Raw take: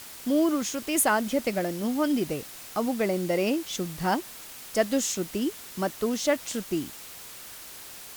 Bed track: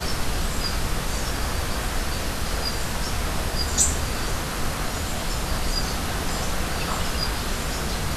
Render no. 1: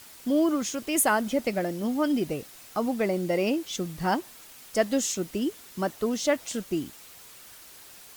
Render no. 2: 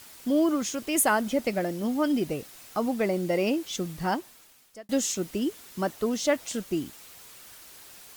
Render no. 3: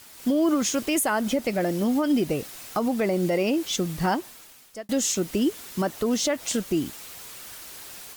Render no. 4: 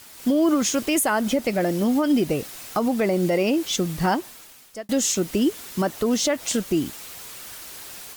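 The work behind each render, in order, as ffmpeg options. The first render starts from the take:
ffmpeg -i in.wav -af "afftdn=noise_reduction=6:noise_floor=-44" out.wav
ffmpeg -i in.wav -filter_complex "[0:a]asplit=2[link_01][link_02];[link_01]atrim=end=4.89,asetpts=PTS-STARTPTS,afade=type=out:start_time=3.92:duration=0.97[link_03];[link_02]atrim=start=4.89,asetpts=PTS-STARTPTS,afade=type=in:duration=0.004:curve=hsin[link_04];[link_03][link_04]concat=n=2:v=0:a=1" out.wav
ffmpeg -i in.wav -af "alimiter=limit=-22dB:level=0:latency=1:release=126,dynaudnorm=framelen=140:gausssize=3:maxgain=7dB" out.wav
ffmpeg -i in.wav -af "volume=2.5dB" out.wav

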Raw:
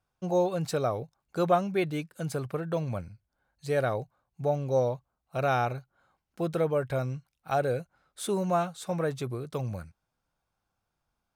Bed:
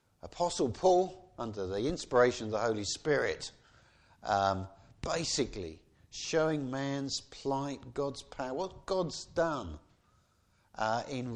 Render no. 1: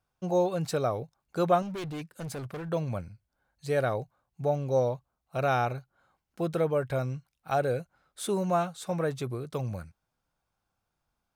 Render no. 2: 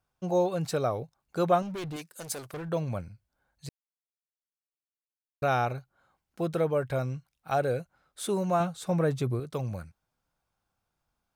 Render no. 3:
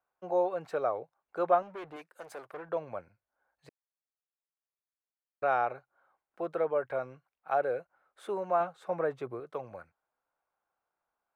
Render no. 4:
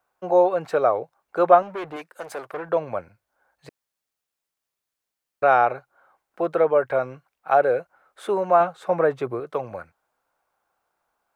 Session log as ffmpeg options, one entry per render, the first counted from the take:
ffmpeg -i in.wav -filter_complex "[0:a]asettb=1/sr,asplit=3[link_01][link_02][link_03];[link_01]atrim=end=1.624[link_04];[link_02]atrim=start=1.62:end=2.69,asetpts=PTS-STARTPTS,afade=type=in:duration=0.004:curve=qsin,afade=type=out:start_time=1.066:duration=0.004:curve=qsin,asoftclip=type=hard:threshold=-34dB[link_05];[link_03]atrim=start=2.686[link_06];[link_04][link_05]acrossfade=duration=0.004:curve1=hsin:curve2=qsin[link_07];[link_07][link_06]acrossfade=duration=0.004:curve1=qsin:curve2=hsin" out.wav
ffmpeg -i in.wav -filter_complex "[0:a]asettb=1/sr,asplit=3[link_01][link_02][link_03];[link_01]atrim=end=1.964[link_04];[link_02]atrim=start=1.96:end=2.54,asetpts=PTS-STARTPTS,afade=type=in:duration=0.004:curve=qsin,afade=type=out:start_time=0.576:duration=0.004:curve=qsin,bass=frequency=250:gain=-11,treble=frequency=4000:gain=10[link_05];[link_03]atrim=start=2.536[link_06];[link_04][link_05]acrossfade=duration=0.004:curve1=hsin:curve2=qsin[link_07];[link_07][link_06]acrossfade=duration=0.004:curve1=qsin:curve2=hsin,asettb=1/sr,asplit=3[link_08][link_09][link_10];[link_08]atrim=end=8.604[link_11];[link_09]atrim=start=8.6:end=9.4,asetpts=PTS-STARTPTS,afade=type=in:duration=0.004:curve=qsin,afade=type=out:start_time=0.796:duration=0.004:curve=qsin,lowshelf=frequency=330:gain=7[link_12];[link_10]atrim=start=9.396[link_13];[link_11][link_12]acrossfade=duration=0.004:curve1=hsin:curve2=qsin[link_14];[link_14][link_13]acrossfade=duration=0.004:curve1=qsin:curve2=hsin,asplit=3[link_15][link_16][link_17];[link_15]atrim=end=3.69,asetpts=PTS-STARTPTS,afade=type=out:start_time=3.686:duration=0.004:curve=hsin[link_18];[link_16]atrim=start=3.69:end=5.42,asetpts=PTS-STARTPTS,volume=0[link_19];[link_17]atrim=start=5.42,asetpts=PTS-STARTPTS,afade=type=in:duration=0.004:curve=hsin[link_20];[link_18][link_19][link_20]concat=n=3:v=0:a=1" out.wav
ffmpeg -i in.wav -filter_complex "[0:a]acrossover=split=380 2200:gain=0.0794 1 0.0794[link_01][link_02][link_03];[link_01][link_02][link_03]amix=inputs=3:normalize=0" out.wav
ffmpeg -i in.wav -af "volume=11dB" out.wav

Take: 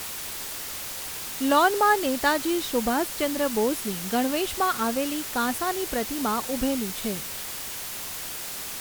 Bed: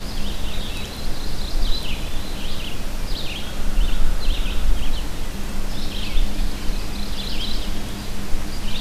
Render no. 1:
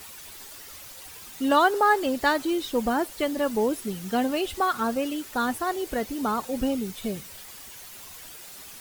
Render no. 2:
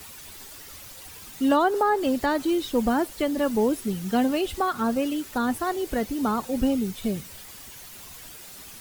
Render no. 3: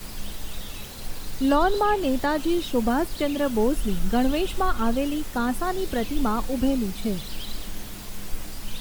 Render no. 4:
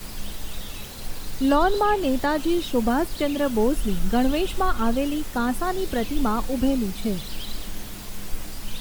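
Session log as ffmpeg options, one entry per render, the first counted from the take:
ffmpeg -i in.wav -af "afftdn=noise_reduction=11:noise_floor=-35" out.wav
ffmpeg -i in.wav -filter_complex "[0:a]acrossover=split=300|1000[link_01][link_02][link_03];[link_01]acontrast=30[link_04];[link_03]alimiter=limit=-23dB:level=0:latency=1:release=157[link_05];[link_04][link_02][link_05]amix=inputs=3:normalize=0" out.wav
ffmpeg -i in.wav -i bed.wav -filter_complex "[1:a]volume=-10dB[link_01];[0:a][link_01]amix=inputs=2:normalize=0" out.wav
ffmpeg -i in.wav -af "volume=1dB" out.wav

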